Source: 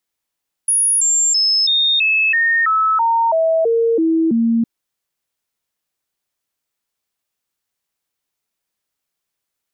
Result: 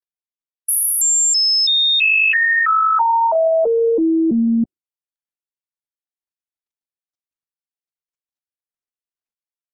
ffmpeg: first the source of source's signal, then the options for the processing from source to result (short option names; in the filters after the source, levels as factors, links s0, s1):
-f lavfi -i "aevalsrc='0.251*clip(min(mod(t,0.33),0.33-mod(t,0.33))/0.005,0,1)*sin(2*PI*10400*pow(2,-floor(t/0.33)/2)*mod(t,0.33))':d=3.96:s=44100"
-af "afftdn=nr=22:nf=-38,highpass=77" -ar 48000 -c:a libopus -b:a 16k